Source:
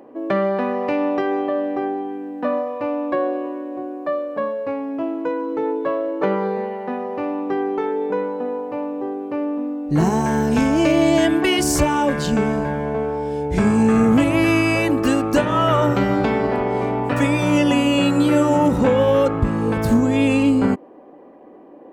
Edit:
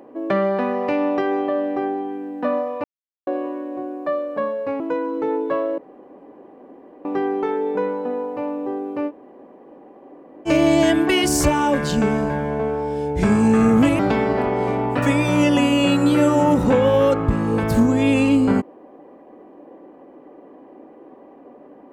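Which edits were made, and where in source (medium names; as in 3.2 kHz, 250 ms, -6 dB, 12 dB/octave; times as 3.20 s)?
2.84–3.27 s: mute
4.80–5.15 s: delete
6.13–7.40 s: room tone
9.44–10.83 s: room tone, crossfade 0.06 s
14.34–16.13 s: delete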